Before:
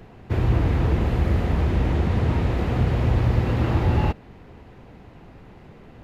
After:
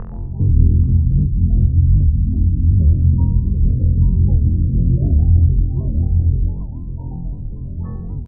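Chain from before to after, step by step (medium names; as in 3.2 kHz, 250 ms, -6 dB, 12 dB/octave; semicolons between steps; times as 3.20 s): square wave that keeps the level; bass shelf 130 Hz +11.5 dB; upward compressor, threshold -24 dBFS; tempo 0.73×; one-sided clip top -14.5 dBFS, bottom -2.5 dBFS; spectral gate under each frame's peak -20 dB strong; resonant low-pass 1.3 kHz, resonance Q 4.6; delay 837 ms -9 dB; compression 4:1, threshold -18 dBFS, peak gain reduction 10.5 dB; comb 1.1 ms, depth 42%; flutter echo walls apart 4 m, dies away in 0.64 s; warped record 78 rpm, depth 250 cents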